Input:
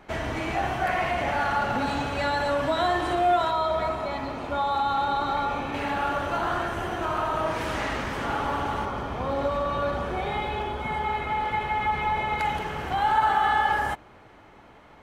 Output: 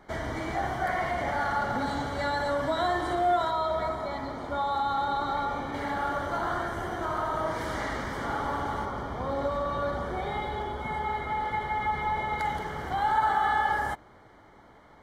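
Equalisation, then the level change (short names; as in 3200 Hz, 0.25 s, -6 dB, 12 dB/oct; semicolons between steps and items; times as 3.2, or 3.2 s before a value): Butterworth band-stop 2600 Hz, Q 4.1; bell 3100 Hz -3 dB 0.37 oct; -3.0 dB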